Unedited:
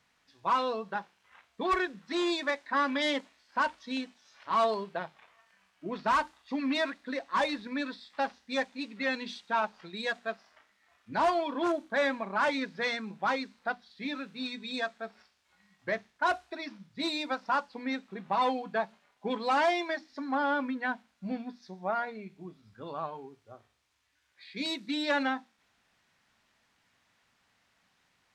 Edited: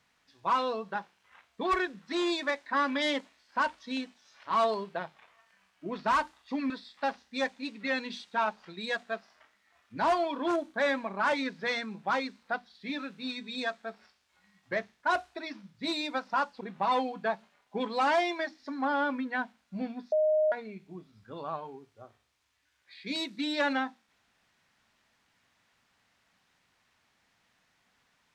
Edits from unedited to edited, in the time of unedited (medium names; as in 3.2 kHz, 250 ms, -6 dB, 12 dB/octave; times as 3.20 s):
6.70–7.86 s: delete
17.77–18.11 s: delete
21.62–22.02 s: bleep 618 Hz -22 dBFS